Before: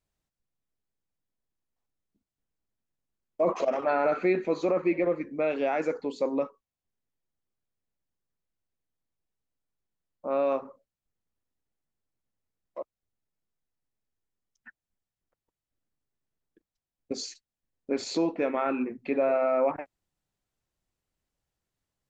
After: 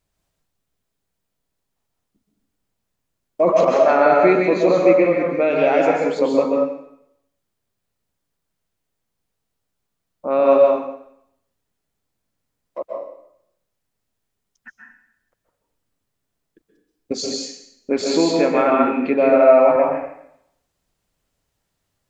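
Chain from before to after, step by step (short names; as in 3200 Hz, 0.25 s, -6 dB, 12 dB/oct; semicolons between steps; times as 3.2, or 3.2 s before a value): plate-style reverb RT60 0.74 s, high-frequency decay 0.95×, pre-delay 0.115 s, DRR -0.5 dB; gain +8.5 dB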